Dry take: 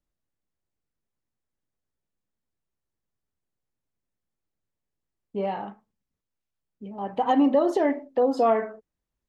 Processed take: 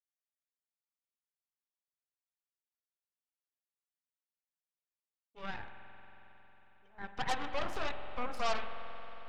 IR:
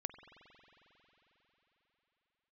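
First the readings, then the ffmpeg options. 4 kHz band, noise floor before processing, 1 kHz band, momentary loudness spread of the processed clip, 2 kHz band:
+1.5 dB, under -85 dBFS, -12.0 dB, 16 LU, -1.5 dB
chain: -filter_complex "[0:a]highpass=880,aeval=exprs='0.158*(cos(1*acos(clip(val(0)/0.158,-1,1)))-cos(1*PI/2))+0.0316*(cos(3*acos(clip(val(0)/0.158,-1,1)))-cos(3*PI/2))+0.0316*(cos(8*acos(clip(val(0)/0.158,-1,1)))-cos(8*PI/2))':c=same[a];[1:a]atrim=start_sample=2205[b];[a][b]afir=irnorm=-1:irlink=0,volume=-3dB"

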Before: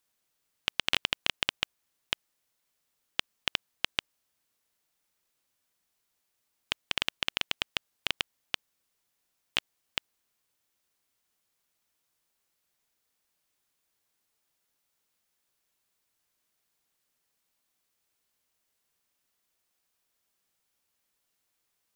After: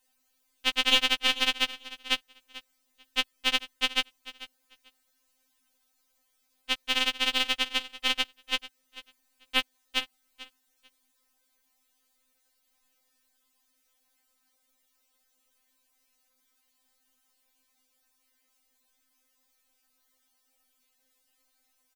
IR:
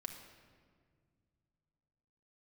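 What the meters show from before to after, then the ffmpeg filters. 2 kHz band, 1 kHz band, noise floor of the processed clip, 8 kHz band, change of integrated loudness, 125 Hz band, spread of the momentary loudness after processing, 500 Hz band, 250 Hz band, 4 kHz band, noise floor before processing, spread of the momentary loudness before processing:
+5.5 dB, +6.0 dB, -74 dBFS, +5.5 dB, +5.5 dB, n/a, 21 LU, +5.5 dB, +9.0 dB, +6.0 dB, -79 dBFS, 10 LU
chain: -af "lowshelf=f=130:g=8.5,aecho=1:1:442|884:0.141|0.024,afftfilt=real='re*3.46*eq(mod(b,12),0)':imag='im*3.46*eq(mod(b,12),0)':win_size=2048:overlap=0.75,volume=8dB"

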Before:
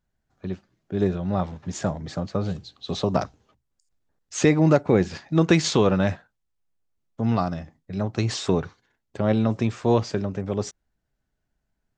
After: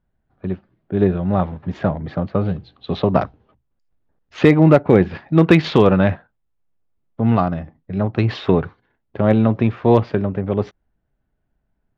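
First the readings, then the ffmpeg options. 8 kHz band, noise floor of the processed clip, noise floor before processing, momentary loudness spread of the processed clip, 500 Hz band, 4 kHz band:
under -15 dB, -72 dBFS, -78 dBFS, 16 LU, +6.5 dB, 0.0 dB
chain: -filter_complex "[0:a]asplit=2[a][b];[b]adynamicsmooth=sensitivity=7.5:basefreq=1.8k,volume=1dB[c];[a][c]amix=inputs=2:normalize=0,lowpass=f=3.5k:w=0.5412,lowpass=f=3.5k:w=1.3066,asoftclip=type=hard:threshold=-1.5dB"

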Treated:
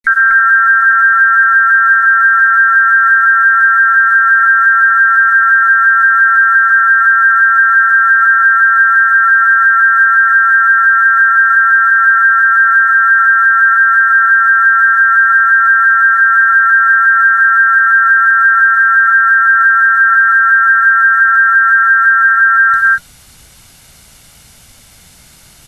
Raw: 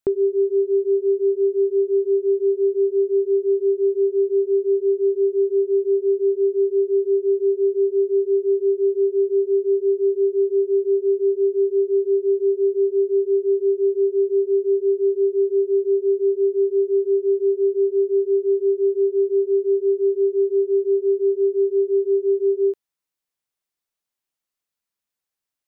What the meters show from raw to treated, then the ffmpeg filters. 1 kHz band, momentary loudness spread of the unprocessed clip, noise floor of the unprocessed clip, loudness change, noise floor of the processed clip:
n/a, 1 LU, under -85 dBFS, +13.0 dB, -42 dBFS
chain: -filter_complex "[0:a]afftfilt=real='real(if(between(b,1,1012),(2*floor((b-1)/92)+1)*92-b,b),0)':imag='imag(if(between(b,1,1012),(2*floor((b-1)/92)+1)*92-b,b),0)*if(between(b,1,1012),-1,1)':win_size=2048:overlap=0.75,areverse,acompressor=mode=upward:threshold=-36dB:ratio=2.5,areverse,tremolo=f=230:d=0.889,aecho=1:1:1.4:0.52,asplit=2[a][b];[b]aecho=0:1:131.2|242:0.282|0.562[c];[a][c]amix=inputs=2:normalize=0,asubboost=boost=5:cutoff=250,acrusher=bits=9:mix=0:aa=0.000001,flanger=delay=0.5:depth=7.2:regen=-86:speed=0.17:shape=triangular,alimiter=level_in=24.5dB:limit=-1dB:release=50:level=0:latency=1,volume=-1dB" -ar 44100 -c:a mp2 -b:a 128k

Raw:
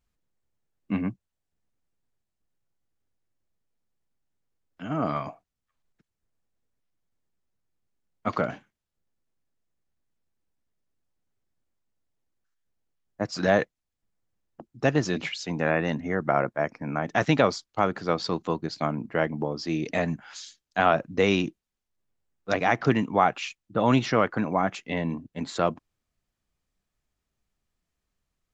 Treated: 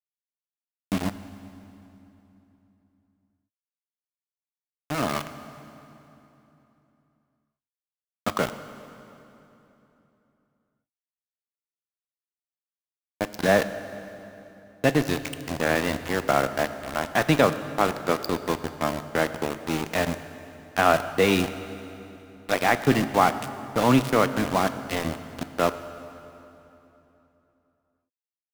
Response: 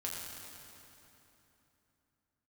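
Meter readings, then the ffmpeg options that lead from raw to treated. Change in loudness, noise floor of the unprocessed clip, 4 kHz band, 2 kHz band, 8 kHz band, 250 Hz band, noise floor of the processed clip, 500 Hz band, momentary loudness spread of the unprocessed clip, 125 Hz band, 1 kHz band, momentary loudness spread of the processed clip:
+1.5 dB, -84 dBFS, +3.5 dB, +2.5 dB, n/a, +1.0 dB, under -85 dBFS, +1.5 dB, 11 LU, 0.0 dB, +1.5 dB, 20 LU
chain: -filter_complex "[0:a]highpass=f=95:w=0.5412,highpass=f=95:w=1.3066,aeval=exprs='val(0)*gte(abs(val(0)),0.0562)':c=same,asplit=2[a][b];[1:a]atrim=start_sample=2205[c];[b][c]afir=irnorm=-1:irlink=0,volume=-9dB[d];[a][d]amix=inputs=2:normalize=0"

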